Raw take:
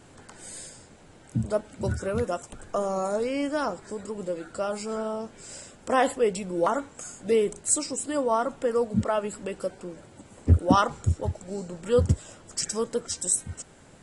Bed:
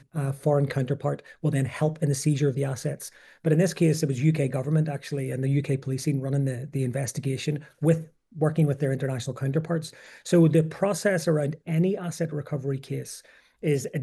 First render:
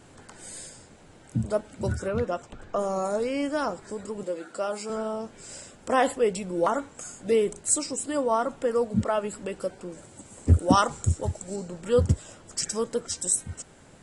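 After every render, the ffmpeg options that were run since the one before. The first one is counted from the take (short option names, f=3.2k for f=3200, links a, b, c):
-filter_complex "[0:a]asettb=1/sr,asplit=3[a][b][c];[a]atrim=end=2.084[d];[b]atrim=start=2.08:end=2.79,asetpts=PTS-STARTPTS,afade=t=in:d=0.004:c=qsin,afade=t=out:st=0.706:d=0.004:c=qsin,lowpass=4.6k[e];[c]atrim=start=2.786[f];[d][e]acrossfade=d=0.004:c1=hsin:c2=qsin[g];[g][f]acrossfade=d=0.004:c1=qsin:c2=hsin,asettb=1/sr,asplit=3[h][i][j];[h]atrim=end=4.234[k];[i]atrim=start=4.23:end=4.9,asetpts=PTS-STARTPTS,afade=t=in:d=0.004:c=qsin,afade=t=out:st=0.666:d=0.004:c=qsin,highpass=240[l];[j]atrim=start=4.896[m];[k][l]acrossfade=d=0.004:c1=hsin:c2=qsin[n];[n][m]acrossfade=d=0.004:c1=qsin:c2=hsin,asettb=1/sr,asplit=3[o][p][q];[o]atrim=end=9.924[r];[p]atrim=start=9.92:end=11.56,asetpts=PTS-STARTPTS,afade=t=in:d=0.004:c=qsin,afade=t=out:st=1.636:d=0.004:c=qsin,equalizer=f=8.1k:w=1.1:g=10[s];[q]atrim=start=11.556[t];[r][s]acrossfade=d=0.004:c1=hsin:c2=qsin[u];[u][t]acrossfade=d=0.004:c1=qsin:c2=hsin"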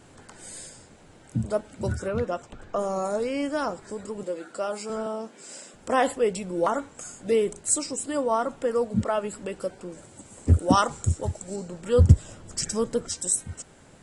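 -filter_complex "[0:a]asettb=1/sr,asplit=3[a][b][c];[a]atrim=end=5.064[d];[b]atrim=start=5.06:end=5.74,asetpts=PTS-STARTPTS,afade=t=in:d=0.004:c=qsin,afade=t=out:st=0.676:d=0.004:c=qsin,highpass=f=190:w=0.5412,highpass=f=190:w=1.3066[e];[c]atrim=start=5.736[f];[d][e]acrossfade=d=0.004:c1=hsin:c2=qsin[g];[g][f]acrossfade=d=0.004:c1=qsin:c2=hsin,asettb=1/sr,asplit=3[h][i][j];[h]atrim=end=11.994[k];[i]atrim=start=11.99:end=13.09,asetpts=PTS-STARTPTS,afade=t=in:d=0.004:c=qsin,afade=t=out:st=1.096:d=0.004:c=qsin,lowshelf=f=200:g=10.5[l];[j]atrim=start=13.086[m];[k][l]acrossfade=d=0.004:c1=hsin:c2=qsin[n];[n][m]acrossfade=d=0.004:c1=qsin:c2=hsin"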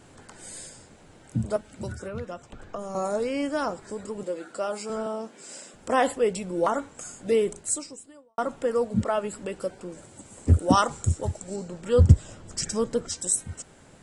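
-filter_complex "[0:a]asettb=1/sr,asplit=3[a][b][c];[a]atrim=end=1.564[d];[b]atrim=start=1.56:end=2.95,asetpts=PTS-STARTPTS,afade=t=in:d=0.004:c=qsin,afade=t=out:st=1.386:d=0.004:c=qsin,acrossover=split=190|1300[e][f][g];[e]acompressor=threshold=-36dB:ratio=4[h];[f]acompressor=threshold=-36dB:ratio=4[i];[g]acompressor=threshold=-46dB:ratio=4[j];[h][i][j]amix=inputs=3:normalize=0[k];[c]atrim=start=2.946[l];[d][k]acrossfade=d=0.004:c1=hsin:c2=qsin[m];[m][l]acrossfade=d=0.004:c1=qsin:c2=hsin,asettb=1/sr,asplit=3[n][o][p];[n]atrim=end=11.374[q];[o]atrim=start=11.37:end=13.29,asetpts=PTS-STARTPTS,afade=t=in:d=0.004:c=qsin,afade=t=out:st=1.916:d=0.004:c=qsin,lowpass=9.3k[r];[p]atrim=start=13.286[s];[q][r]acrossfade=d=0.004:c1=hsin:c2=qsin[t];[t][s]acrossfade=d=0.004:c1=qsin:c2=hsin,asplit=2[u][v];[u]atrim=end=8.38,asetpts=PTS-STARTPTS,afade=t=out:st=7.56:d=0.82:c=qua[w];[v]atrim=start=8.38,asetpts=PTS-STARTPTS,afade=t=in:d=0.004:c=hsin[x];[w][x]concat=n=2:v=0:a=1"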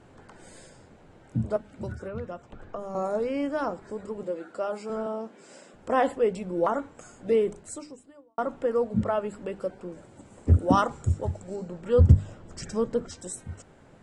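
-af "lowpass=f=1.6k:p=1,bandreject=f=50:t=h:w=6,bandreject=f=100:t=h:w=6,bandreject=f=150:t=h:w=6,bandreject=f=200:t=h:w=6,bandreject=f=250:t=h:w=6,bandreject=f=300:t=h:w=6"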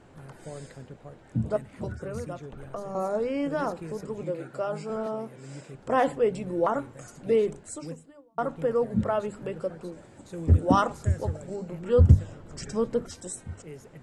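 -filter_complex "[1:a]volume=-19dB[a];[0:a][a]amix=inputs=2:normalize=0"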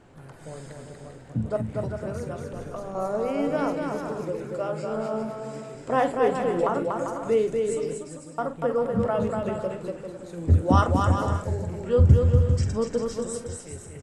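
-filter_complex "[0:a]asplit=2[a][b];[b]adelay=46,volume=-11.5dB[c];[a][c]amix=inputs=2:normalize=0,aecho=1:1:240|396|497.4|563.3|606.2:0.631|0.398|0.251|0.158|0.1"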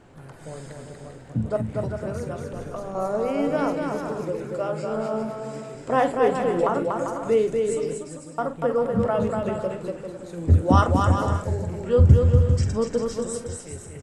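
-af "volume=2dB"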